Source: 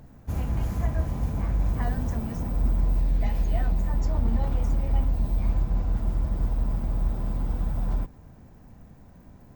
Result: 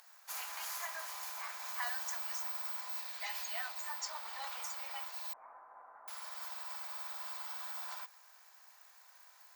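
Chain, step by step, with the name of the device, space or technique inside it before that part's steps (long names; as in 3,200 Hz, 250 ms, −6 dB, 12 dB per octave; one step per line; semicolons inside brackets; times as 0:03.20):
headphones lying on a table (high-pass filter 1,000 Hz 24 dB per octave; parametric band 4,600 Hz +5 dB 0.53 octaves)
0:05.33–0:06.08: Bessel low-pass filter 870 Hz, order 8
parametric band 13,000 Hz +9 dB 2.2 octaves
level +1 dB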